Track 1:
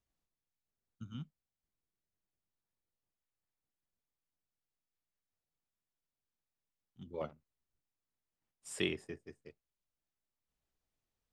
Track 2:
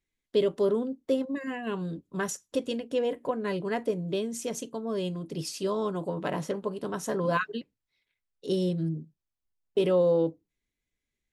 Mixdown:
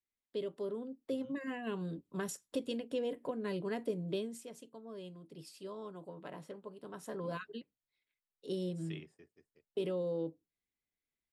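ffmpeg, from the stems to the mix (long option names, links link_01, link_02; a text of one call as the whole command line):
ffmpeg -i stem1.wav -i stem2.wav -filter_complex "[0:a]adelay=100,volume=-14.5dB[link_01];[1:a]equalizer=frequency=6200:width_type=o:width=0.27:gain=-10,volume=2dB,afade=type=in:start_time=0.77:duration=0.77:silence=0.398107,afade=type=out:start_time=4.15:duration=0.31:silence=0.281838,afade=type=in:start_time=6.77:duration=0.62:silence=0.473151[link_02];[link_01][link_02]amix=inputs=2:normalize=0,lowshelf=frequency=83:gain=-9,acrossover=split=440|3000[link_03][link_04][link_05];[link_04]acompressor=threshold=-42dB:ratio=6[link_06];[link_03][link_06][link_05]amix=inputs=3:normalize=0" out.wav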